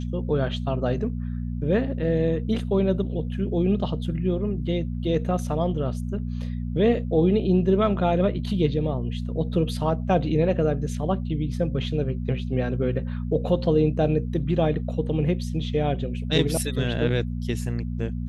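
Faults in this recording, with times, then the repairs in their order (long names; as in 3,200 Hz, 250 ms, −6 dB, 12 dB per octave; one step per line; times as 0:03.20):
mains hum 60 Hz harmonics 4 −29 dBFS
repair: hum removal 60 Hz, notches 4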